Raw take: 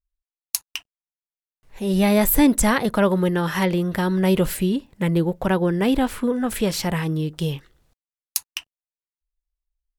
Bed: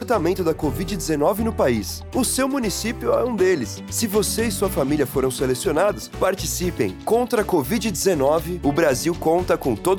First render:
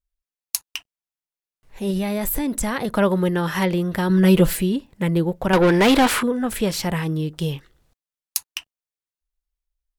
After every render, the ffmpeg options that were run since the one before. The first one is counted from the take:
-filter_complex "[0:a]asettb=1/sr,asplit=3[a][b][c];[a]atrim=end=1.904[d];[b]atrim=start=1.9:end=2.97,asetpts=PTS-STARTPTS,afade=t=in:d=0.004:c=qsin,afade=t=out:st=1.066:d=0.004:c=qsin,acompressor=threshold=-19dB:ratio=10:attack=3.2:release=140:knee=1:detection=peak[e];[c]atrim=start=2.966[f];[d][e]acrossfade=d=0.004:c1=hsin:c2=qsin[g];[g][f]acrossfade=d=0.004:c1=qsin:c2=hsin,asettb=1/sr,asplit=3[h][i][j];[h]atrim=end=4.094[k];[i]atrim=start=4.09:end=4.62,asetpts=PTS-STARTPTS,afade=t=in:d=0.004:c=qsin,afade=t=out:st=0.526:d=0.004:c=qsin,aecho=1:1:6:0.98,atrim=end_sample=23373[l];[j]atrim=start=4.616[m];[k][l]acrossfade=d=0.004:c1=hsin:c2=qsin[n];[n][m]acrossfade=d=0.004:c1=qsin:c2=hsin,asettb=1/sr,asplit=3[o][p][q];[o]atrim=end=5.534[r];[p]atrim=start=5.53:end=6.23,asetpts=PTS-STARTPTS,afade=t=in:d=0.004:c=qsin,afade=t=out:st=0.696:d=0.004:c=qsin,asplit=2[s][t];[t]highpass=f=720:p=1,volume=24dB,asoftclip=type=tanh:threshold=-7.5dB[u];[s][u]amix=inputs=2:normalize=0,lowpass=f=6.6k:p=1,volume=-6dB[v];[q]atrim=start=6.226[w];[r][v]acrossfade=d=0.004:c1=hsin:c2=qsin[x];[x][w]acrossfade=d=0.004:c1=qsin:c2=hsin"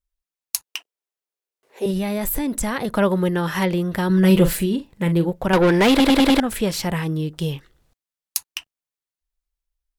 -filter_complex "[0:a]asettb=1/sr,asplit=3[a][b][c];[a]atrim=end=0.664[d];[b]atrim=start=0.66:end=1.86,asetpts=PTS-STARTPTS,afade=t=in:d=0.004:c=qsin,afade=t=out:st=1.196:d=0.004:c=qsin,highpass=f=420:t=q:w=2.9[e];[c]atrim=start=1.856[f];[d][e]acrossfade=d=0.004:c1=hsin:c2=qsin[g];[g][f]acrossfade=d=0.004:c1=qsin:c2=hsin,asettb=1/sr,asplit=3[h][i][j];[h]atrim=end=4.264[k];[i]atrim=start=4.26:end=5.3,asetpts=PTS-STARTPTS,afade=t=in:d=0.004:c=qsin,afade=t=out:st=1.036:d=0.004:c=qsin,asplit=2[l][m];[m]adelay=41,volume=-11dB[n];[l][n]amix=inputs=2:normalize=0,atrim=end_sample=45864[o];[j]atrim=start=5.296[p];[k][o]acrossfade=d=0.004:c1=hsin:c2=qsin[q];[q][p]acrossfade=d=0.004:c1=qsin:c2=hsin,asplit=6[r][s][t][u][v][w];[r]atrim=end=6.002[x];[s]atrim=start=5.898:end=6.002[y];[t]atrim=start=5.898:end=6.002[z];[u]atrim=start=5.898:end=6.002[aa];[v]atrim=start=5.898:end=6.002[ab];[w]atrim=start=6.398[ac];[x][y]acrossfade=d=0.004:c1=hsin:c2=hsin[ad];[ad][z]acrossfade=d=0.004:c1=hsin:c2=hsin[ae];[ae][aa]acrossfade=d=0.004:c1=hsin:c2=hsin[af];[af][ab]acrossfade=d=0.004:c1=hsin:c2=hsin[ag];[ag][ac]acrossfade=d=0.004:c1=hsin:c2=hsin"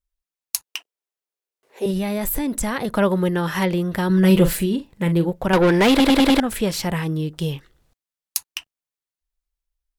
-af anull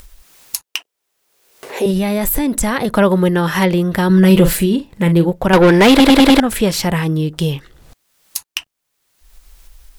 -af "acompressor=mode=upward:threshold=-22dB:ratio=2.5,alimiter=level_in=6.5dB:limit=-1dB:release=50:level=0:latency=1"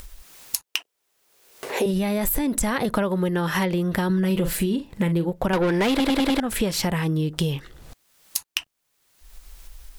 -af "acompressor=threshold=-20dB:ratio=6"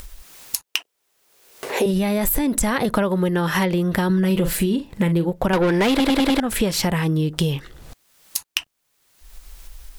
-af "volume=3dB,alimiter=limit=-1dB:level=0:latency=1"

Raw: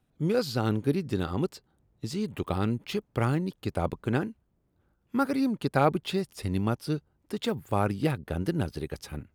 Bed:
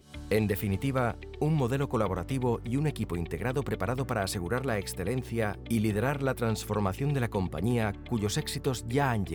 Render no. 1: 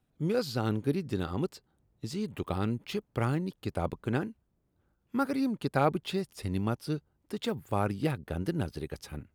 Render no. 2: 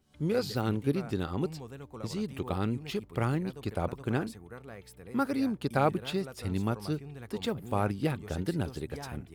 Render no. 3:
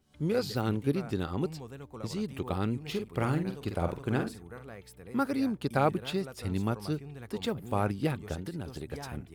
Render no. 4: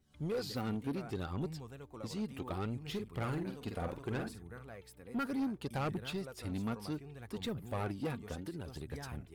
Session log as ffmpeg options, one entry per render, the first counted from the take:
-af "volume=-3dB"
-filter_complex "[1:a]volume=-16dB[a];[0:a][a]amix=inputs=2:normalize=0"
-filter_complex "[0:a]asettb=1/sr,asplit=3[a][b][c];[a]atrim=end=2.824[d];[b]atrim=start=2.82:end=4.69,asetpts=PTS-STARTPTS,afade=t=in:d=0.004:c=qsin,afade=t=out:st=1.866:d=0.004:c=qsin,asplit=2[e][f];[f]adelay=47,volume=-7dB[g];[e][g]amix=inputs=2:normalize=0,atrim=end_sample=82467[h];[c]atrim=start=4.686[i];[d][h]acrossfade=d=0.004:c1=hsin:c2=qsin[j];[j][i]acrossfade=d=0.004:c1=qsin:c2=hsin,asettb=1/sr,asplit=3[k][l][m];[k]atrim=end=8.344[n];[l]atrim=start=8.34:end=8.87,asetpts=PTS-STARTPTS,afade=t=in:d=0.004:c=qsin,afade=t=out:st=0.526:d=0.004:c=qsin,acompressor=threshold=-33dB:ratio=6:attack=3.2:release=140:knee=1:detection=peak[o];[m]atrim=start=8.866[p];[n][o]acrossfade=d=0.004:c1=hsin:c2=qsin[q];[q][p]acrossfade=d=0.004:c1=qsin:c2=hsin"
-af "flanger=delay=0.5:depth=3.8:regen=52:speed=0.67:shape=sinusoidal,asoftclip=type=tanh:threshold=-30.5dB"

